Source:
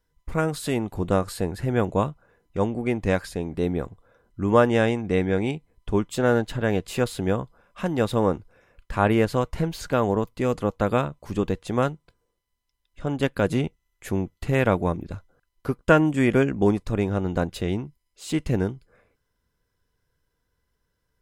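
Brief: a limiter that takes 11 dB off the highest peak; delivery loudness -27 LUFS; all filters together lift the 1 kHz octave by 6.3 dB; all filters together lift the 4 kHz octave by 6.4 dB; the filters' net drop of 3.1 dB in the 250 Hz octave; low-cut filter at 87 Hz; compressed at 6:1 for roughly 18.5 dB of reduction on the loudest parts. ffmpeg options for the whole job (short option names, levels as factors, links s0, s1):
-af "highpass=87,equalizer=f=250:t=o:g=-4.5,equalizer=f=1000:t=o:g=8,equalizer=f=4000:t=o:g=7.5,acompressor=threshold=0.0355:ratio=6,volume=3.35,alimiter=limit=0.178:level=0:latency=1"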